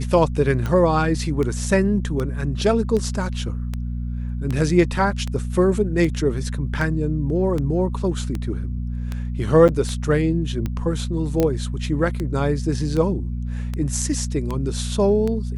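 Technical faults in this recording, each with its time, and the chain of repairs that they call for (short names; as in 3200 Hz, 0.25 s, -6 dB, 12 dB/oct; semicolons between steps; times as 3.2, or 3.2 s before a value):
hum 60 Hz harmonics 4 -26 dBFS
tick 78 rpm -14 dBFS
9.68–9.69 gap 7.9 ms
11.4 pop -7 dBFS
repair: de-click; de-hum 60 Hz, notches 4; interpolate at 9.68, 7.9 ms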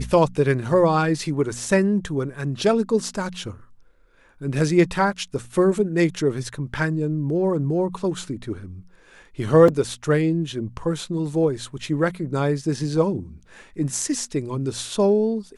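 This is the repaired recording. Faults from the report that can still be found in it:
none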